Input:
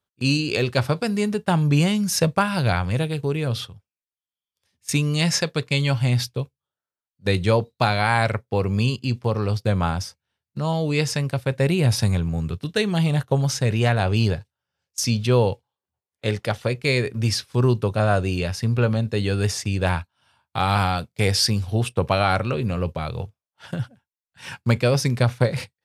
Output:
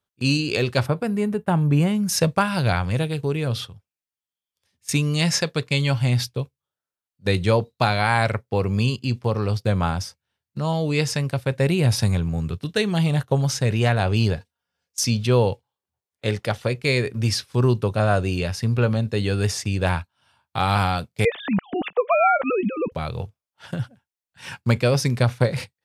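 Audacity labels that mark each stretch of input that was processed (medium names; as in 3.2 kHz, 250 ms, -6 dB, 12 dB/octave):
0.860000	2.090000	peaking EQ 5.1 kHz -14.5 dB 1.7 oct
14.370000	15.050000	comb 4.2 ms, depth 63%
21.250000	22.920000	formants replaced by sine waves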